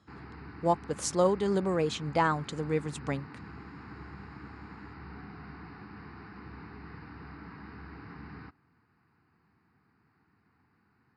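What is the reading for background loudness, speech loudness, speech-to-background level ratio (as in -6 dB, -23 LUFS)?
-47.0 LUFS, -30.0 LUFS, 17.0 dB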